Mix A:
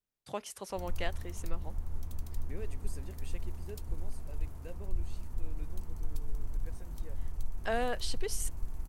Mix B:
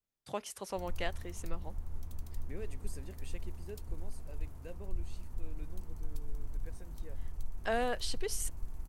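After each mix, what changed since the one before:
background -3.5 dB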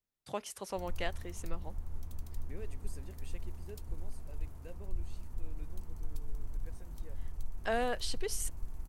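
second voice -3.0 dB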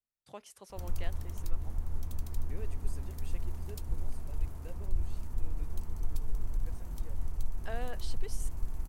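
first voice -9.0 dB; background +6.0 dB

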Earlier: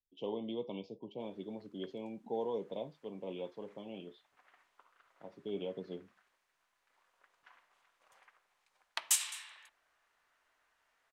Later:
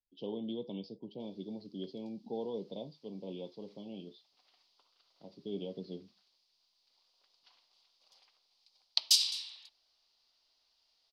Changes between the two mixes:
background: add tilt +3 dB/oct; master: add EQ curve 110 Hz 0 dB, 190 Hz +4 dB, 350 Hz 0 dB, 510 Hz -3 dB, 810 Hz -5 dB, 1700 Hz -20 dB, 4800 Hz +13 dB, 7300 Hz -15 dB

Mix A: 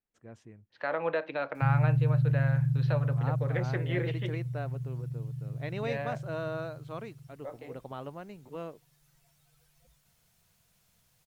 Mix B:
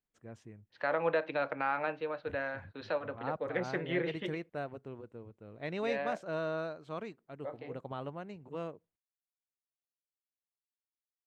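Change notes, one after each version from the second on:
background: muted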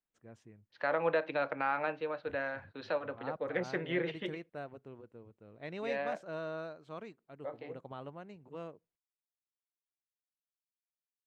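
first voice -4.5 dB; master: add bell 66 Hz -3 dB 1.5 oct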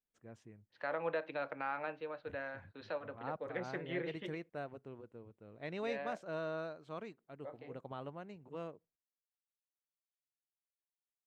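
second voice -6.5 dB

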